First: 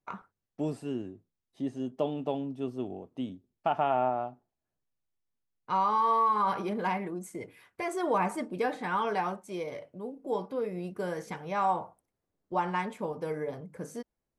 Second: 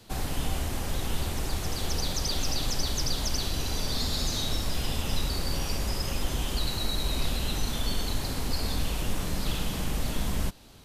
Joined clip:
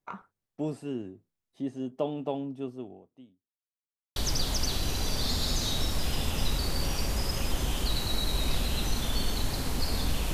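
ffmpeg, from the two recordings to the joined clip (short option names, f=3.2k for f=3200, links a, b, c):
-filter_complex "[0:a]apad=whole_dur=10.33,atrim=end=10.33,asplit=2[a][b];[a]atrim=end=3.61,asetpts=PTS-STARTPTS,afade=t=out:st=2.56:d=1.05:c=qua[c];[b]atrim=start=3.61:end=4.16,asetpts=PTS-STARTPTS,volume=0[d];[1:a]atrim=start=2.87:end=9.04,asetpts=PTS-STARTPTS,afade=t=in:d=0.004:c=hsin[e];[c][d][e]concat=n=3:v=0:a=1"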